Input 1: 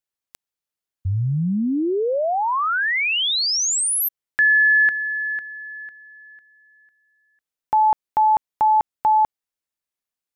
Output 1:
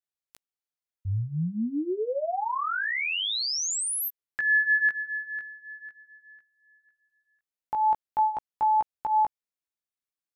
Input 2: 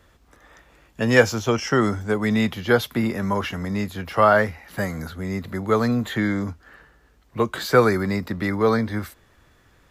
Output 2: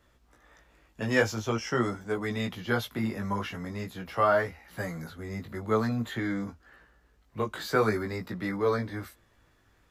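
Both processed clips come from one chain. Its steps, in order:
chorus effect 0.46 Hz, delay 16 ms, depth 3.1 ms
level −5 dB

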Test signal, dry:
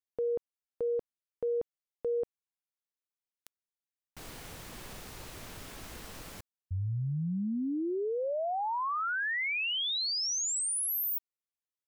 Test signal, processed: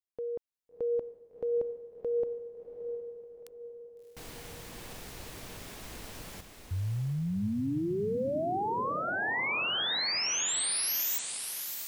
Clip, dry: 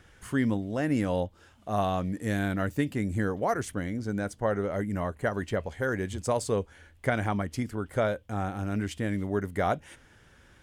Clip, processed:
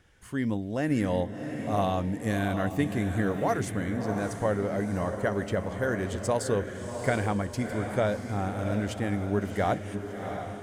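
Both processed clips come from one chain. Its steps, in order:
automatic gain control gain up to 6 dB
parametric band 1,300 Hz −3 dB 0.45 octaves
on a send: feedback delay with all-pass diffusion 685 ms, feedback 46%, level −7 dB
on the sum: level −5.5 dB

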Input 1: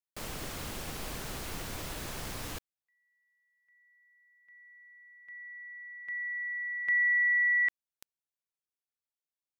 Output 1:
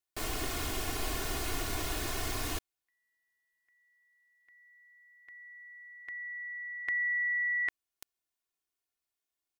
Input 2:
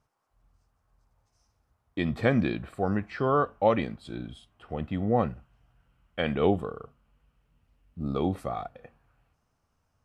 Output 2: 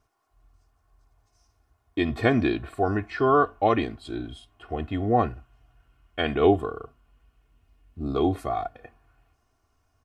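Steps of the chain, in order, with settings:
comb filter 2.8 ms, depth 73%
level +2.5 dB

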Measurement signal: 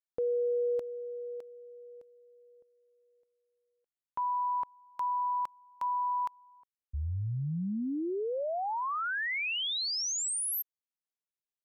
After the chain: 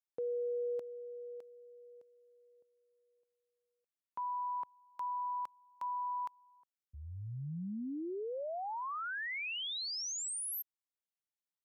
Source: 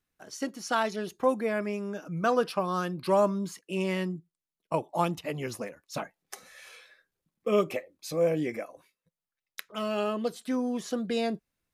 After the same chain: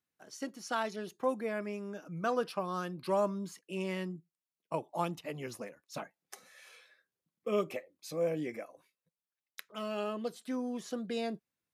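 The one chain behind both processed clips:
high-pass filter 110 Hz
level −6.5 dB

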